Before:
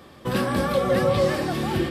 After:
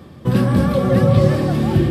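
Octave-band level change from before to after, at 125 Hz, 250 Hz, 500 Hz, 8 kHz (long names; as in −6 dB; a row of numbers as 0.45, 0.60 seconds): +13.5 dB, +9.0 dB, +3.0 dB, can't be measured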